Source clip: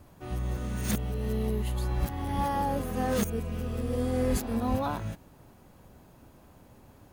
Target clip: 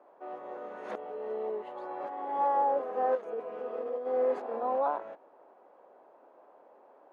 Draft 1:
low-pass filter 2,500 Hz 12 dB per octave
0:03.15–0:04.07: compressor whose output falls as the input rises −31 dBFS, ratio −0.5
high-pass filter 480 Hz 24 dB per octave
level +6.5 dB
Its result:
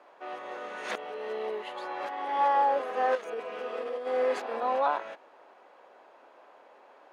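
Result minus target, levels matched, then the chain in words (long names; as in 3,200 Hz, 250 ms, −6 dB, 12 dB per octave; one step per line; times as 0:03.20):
2,000 Hz band +9.5 dB
low-pass filter 840 Hz 12 dB per octave
0:03.15–0:04.07: compressor whose output falls as the input rises −31 dBFS, ratio −0.5
high-pass filter 480 Hz 24 dB per octave
level +6.5 dB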